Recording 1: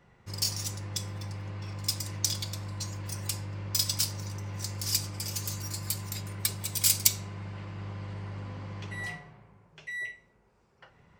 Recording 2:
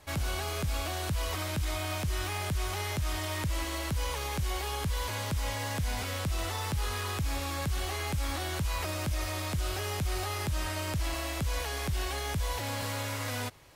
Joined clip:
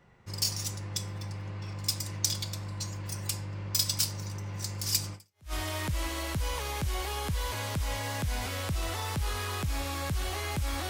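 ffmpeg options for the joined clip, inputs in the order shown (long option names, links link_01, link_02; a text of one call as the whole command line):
ffmpeg -i cue0.wav -i cue1.wav -filter_complex "[0:a]apad=whole_dur=10.89,atrim=end=10.89,atrim=end=5.53,asetpts=PTS-STARTPTS[link_01];[1:a]atrim=start=2.69:end=8.45,asetpts=PTS-STARTPTS[link_02];[link_01][link_02]acrossfade=duration=0.4:curve1=exp:curve2=exp" out.wav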